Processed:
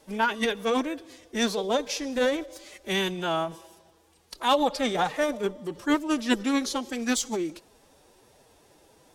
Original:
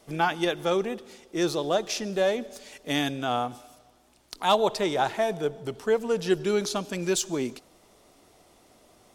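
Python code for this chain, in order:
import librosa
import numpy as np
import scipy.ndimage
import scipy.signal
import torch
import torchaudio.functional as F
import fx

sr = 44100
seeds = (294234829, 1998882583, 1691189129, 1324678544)

y = fx.pitch_keep_formants(x, sr, semitones=5.0)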